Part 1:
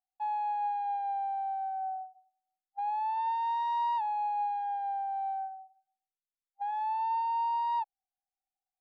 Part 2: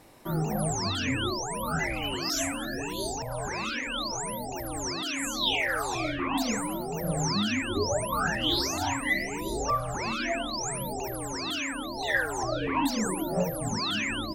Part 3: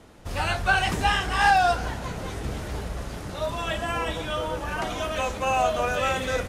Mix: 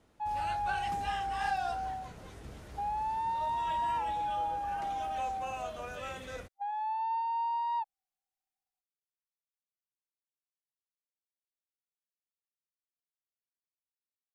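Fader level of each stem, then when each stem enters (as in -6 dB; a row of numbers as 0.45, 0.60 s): -2.0 dB, off, -16.0 dB; 0.00 s, off, 0.00 s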